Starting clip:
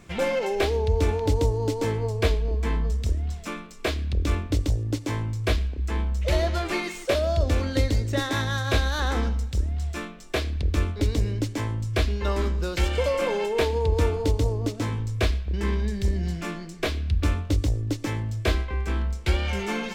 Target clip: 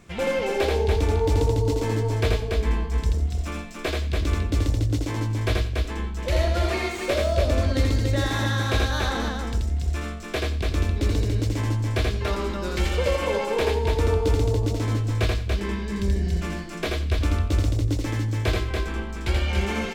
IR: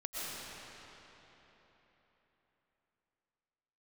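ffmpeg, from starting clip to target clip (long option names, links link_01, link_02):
-filter_complex "[0:a]asettb=1/sr,asplit=3[link_01][link_02][link_03];[link_01]atrim=end=6.674[link_04];[link_02]atrim=start=6.67:end=7.08,asetpts=PTS-STARTPTS,afade=type=in:duration=0.004:curve=qsin,afade=type=out:start_time=0.406:duration=0.004:curve=qsin,afreqshift=16[link_05];[link_03]atrim=start=7.076[link_06];[link_04][link_05]acrossfade=duration=0.004:curve1=hsin:curve2=qsin[link_07];[link_07][link_06]acrossfade=duration=0.004:curve1=qsin:curve2=hsin,aecho=1:1:81.63|285.7:0.708|0.631,asplit=2[link_08][link_09];[1:a]atrim=start_sample=2205,atrim=end_sample=3087,adelay=90[link_10];[link_09][link_10]afir=irnorm=-1:irlink=0,volume=-10dB[link_11];[link_08][link_11]amix=inputs=2:normalize=0,volume=-1.5dB"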